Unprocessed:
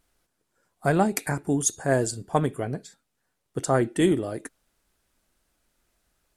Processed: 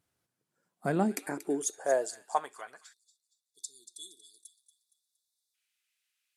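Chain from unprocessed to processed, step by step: feedback echo behind a high-pass 233 ms, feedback 38%, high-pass 2.3 kHz, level -12 dB; high-pass sweep 110 Hz -> 2.5 kHz, 0.24–3.52 s; spectral selection erased 2.93–5.54 s, 470–3400 Hz; trim -9 dB

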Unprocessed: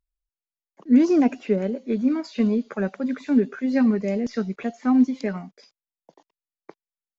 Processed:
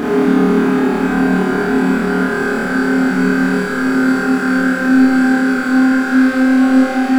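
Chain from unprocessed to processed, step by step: low-pass 2.8 kHz; waveshaping leveller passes 5; peak limiter -18.5 dBFS, peak gain reduction 11 dB; Paulstretch 27×, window 0.50 s, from 3.41 s; on a send: flutter echo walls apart 4.6 m, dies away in 1.2 s; on the sum: trim +2.5 dB

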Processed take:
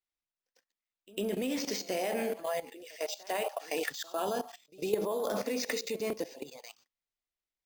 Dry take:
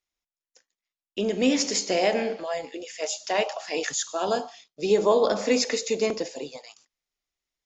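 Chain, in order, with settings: level held to a coarse grid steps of 16 dB; careless resampling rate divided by 4×, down filtered, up hold; reverse echo 101 ms -21.5 dB

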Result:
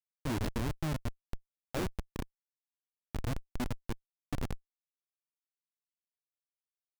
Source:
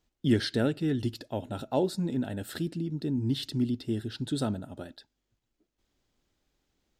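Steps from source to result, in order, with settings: feedback delay 98 ms, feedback 40%, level -15 dB; Schmitt trigger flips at -24 dBFS

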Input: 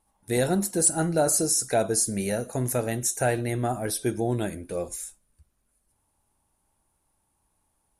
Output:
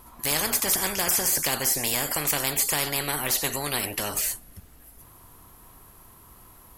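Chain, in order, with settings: tape speed +18%; spectrum-flattening compressor 4:1

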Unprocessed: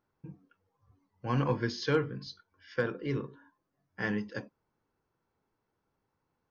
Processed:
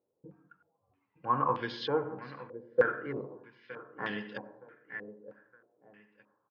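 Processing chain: high-pass 360 Hz 6 dB/octave; distance through air 76 m; feedback delay 916 ms, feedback 31%, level -13 dB; algorithmic reverb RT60 0.67 s, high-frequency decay 0.45×, pre-delay 40 ms, DRR 9.5 dB; step-sequenced low-pass 3.2 Hz 510–3300 Hz; trim -2 dB

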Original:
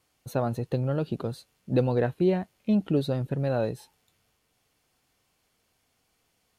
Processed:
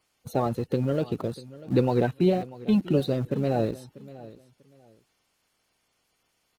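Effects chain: coarse spectral quantiser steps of 30 dB; in parallel at -11 dB: small samples zeroed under -33 dBFS; on the sum: feedback delay 642 ms, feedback 23%, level -18.5 dB

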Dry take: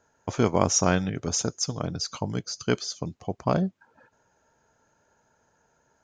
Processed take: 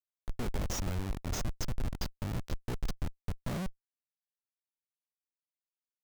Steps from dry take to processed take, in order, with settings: 1.22–3.59 s: bass shelf 180 Hz +7.5 dB; Schmitt trigger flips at -25.5 dBFS; bass shelf 80 Hz +10 dB; trim -8 dB

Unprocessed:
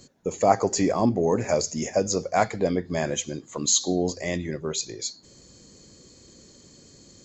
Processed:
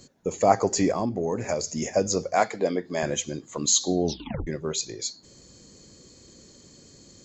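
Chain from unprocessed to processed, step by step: 0.90–1.82 s: compression, threshold -23 dBFS, peak gain reduction 7 dB; 2.35–3.03 s: high-pass 250 Hz 12 dB/octave; 4.04 s: tape stop 0.43 s

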